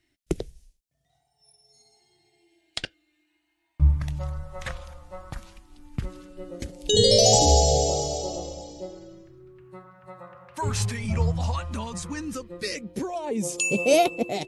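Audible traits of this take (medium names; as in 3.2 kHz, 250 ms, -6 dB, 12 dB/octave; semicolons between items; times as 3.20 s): phasing stages 2, 0.16 Hz, lowest notch 330–1700 Hz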